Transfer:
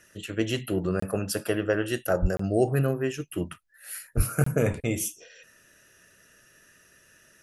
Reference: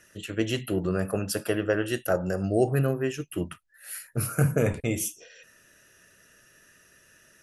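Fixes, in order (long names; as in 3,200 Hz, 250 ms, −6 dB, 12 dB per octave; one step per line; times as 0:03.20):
0:02.21–0:02.33: high-pass filter 140 Hz 24 dB per octave
0:04.16–0:04.28: high-pass filter 140 Hz 24 dB per octave
repair the gap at 0:01.00/0:02.37/0:04.44, 24 ms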